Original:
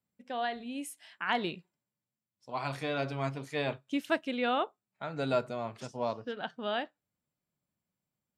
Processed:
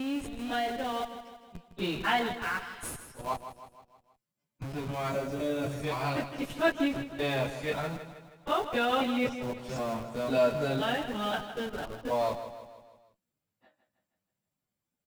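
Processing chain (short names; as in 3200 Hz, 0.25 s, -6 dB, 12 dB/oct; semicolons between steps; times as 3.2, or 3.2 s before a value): slices in reverse order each 0.143 s, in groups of 6; plain phase-vocoder stretch 1.8×; in parallel at -7 dB: Schmitt trigger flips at -43 dBFS; on the sum: spectral gain 5.12–5.83, 670–5500 Hz -7 dB; feedback echo 0.159 s, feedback 51%, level -11 dB; gain +3.5 dB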